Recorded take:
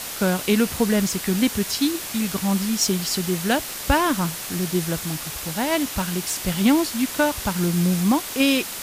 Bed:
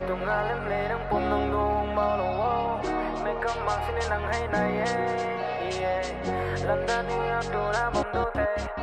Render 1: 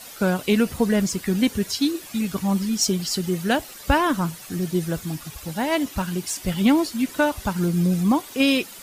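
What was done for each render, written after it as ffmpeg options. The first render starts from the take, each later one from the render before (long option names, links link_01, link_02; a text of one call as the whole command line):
ffmpeg -i in.wav -af "afftdn=noise_reduction=12:noise_floor=-32" out.wav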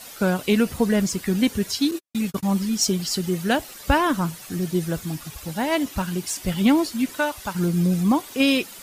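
ffmpeg -i in.wav -filter_complex "[0:a]asettb=1/sr,asplit=3[link_01][link_02][link_03];[link_01]atrim=end=1.914[link_04];[link_02]atrim=start=1.91:end=2.43,asetpts=PTS-STARTPTS,afade=type=in:duration=0.004:curve=qsin,afade=type=out:start_time=0.516:duration=0.004:curve=qsin,agate=range=-56dB:threshold=-31dB:ratio=16:release=100:detection=peak[link_05];[link_03]atrim=start=2.426[link_06];[link_04][link_05]acrossfade=duration=0.004:curve1=hsin:curve2=qsin[link_07];[link_07][link_06]acrossfade=duration=0.004:curve1=qsin:curve2=hsin,asettb=1/sr,asplit=3[link_08][link_09][link_10];[link_08]atrim=end=7.154[link_11];[link_09]atrim=start=7.15:end=7.55,asetpts=PTS-STARTPTS,afade=type=in:duration=0.004:curve=qsin,afade=type=out:start_time=0.396:duration=0.004:curve=qsin,lowshelf=frequency=420:gain=-11[link_12];[link_10]atrim=start=7.546[link_13];[link_11][link_12]acrossfade=duration=0.004:curve1=hsin:curve2=qsin[link_14];[link_14][link_13]acrossfade=duration=0.004:curve1=qsin:curve2=hsin" out.wav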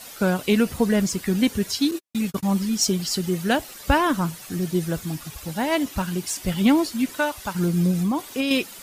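ffmpeg -i in.wav -filter_complex "[0:a]asettb=1/sr,asplit=3[link_01][link_02][link_03];[link_01]atrim=end=7.914[link_04];[link_02]atrim=start=7.91:end=8.51,asetpts=PTS-STARTPTS,afade=type=in:duration=0.004:curve=qsin,afade=type=out:start_time=0.596:duration=0.004:curve=qsin,acompressor=threshold=-19dB:ratio=6:attack=3.2:release=140:knee=1:detection=peak[link_05];[link_03]atrim=start=8.506[link_06];[link_04][link_05]acrossfade=duration=0.004:curve1=hsin:curve2=qsin[link_07];[link_07][link_06]acrossfade=duration=0.004:curve1=qsin:curve2=hsin" out.wav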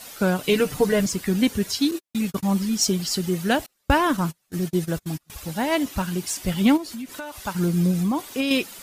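ffmpeg -i in.wav -filter_complex "[0:a]asettb=1/sr,asplit=3[link_01][link_02][link_03];[link_01]atrim=end=0.434[link_04];[link_02]atrim=start=0.43:end=1.06,asetpts=PTS-STARTPTS,afade=type=in:duration=0.004:curve=qsin,afade=type=out:start_time=0.626:duration=0.004:curve=qsin,aecho=1:1:6.7:0.77,atrim=end_sample=27783[link_05];[link_03]atrim=start=1.056[link_06];[link_04][link_05]acrossfade=duration=0.004:curve1=hsin:curve2=qsin[link_07];[link_07][link_06]acrossfade=duration=0.004:curve1=qsin:curve2=hsin,asettb=1/sr,asplit=3[link_08][link_09][link_10];[link_08]atrim=end=3.664[link_11];[link_09]atrim=start=3.66:end=5.3,asetpts=PTS-STARTPTS,afade=type=in:duration=0.004:curve=qsin,afade=type=out:start_time=1.636:duration=0.004:curve=qsin,agate=range=-31dB:threshold=-30dB:ratio=16:release=100:detection=peak[link_12];[link_10]atrim=start=5.296[link_13];[link_11][link_12]acrossfade=duration=0.004:curve1=hsin:curve2=qsin[link_14];[link_14][link_13]acrossfade=duration=0.004:curve1=qsin:curve2=hsin,asplit=3[link_15][link_16][link_17];[link_15]afade=type=out:start_time=6.76:duration=0.02[link_18];[link_16]acompressor=threshold=-31dB:ratio=5:attack=3.2:release=140:knee=1:detection=peak,afade=type=in:start_time=6.76:duration=0.02,afade=type=out:start_time=7.38:duration=0.02[link_19];[link_17]afade=type=in:start_time=7.38:duration=0.02[link_20];[link_18][link_19][link_20]amix=inputs=3:normalize=0" out.wav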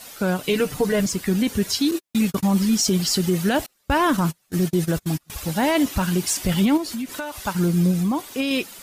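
ffmpeg -i in.wav -af "dynaudnorm=framelen=270:gausssize=13:maxgain=11.5dB,alimiter=limit=-11.5dB:level=0:latency=1:release=22" out.wav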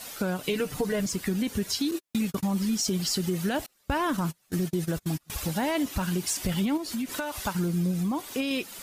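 ffmpeg -i in.wav -af "acompressor=threshold=-28dB:ratio=2.5" out.wav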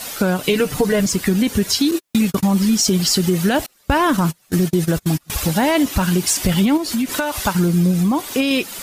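ffmpeg -i in.wav -af "volume=11dB" out.wav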